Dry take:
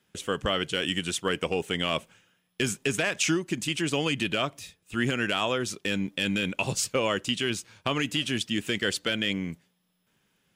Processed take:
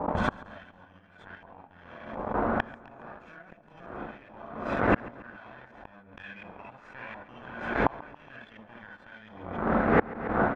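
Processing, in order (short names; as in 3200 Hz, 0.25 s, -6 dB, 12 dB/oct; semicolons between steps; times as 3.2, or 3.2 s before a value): minimum comb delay 1.2 ms; wind noise 560 Hz -34 dBFS; non-linear reverb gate 90 ms rising, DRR -5 dB; sample leveller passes 1; gate with hold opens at -27 dBFS; 6.23–8.87 dynamic EQ 2300 Hz, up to +7 dB, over -36 dBFS, Q 0.85; flipped gate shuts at -15 dBFS, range -33 dB; low shelf 74 Hz -9.5 dB; sample leveller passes 2; LFO low-pass saw up 1.4 Hz 930–1900 Hz; feedback echo 0.139 s, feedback 55%, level -19.5 dB; backwards sustainer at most 64 dB/s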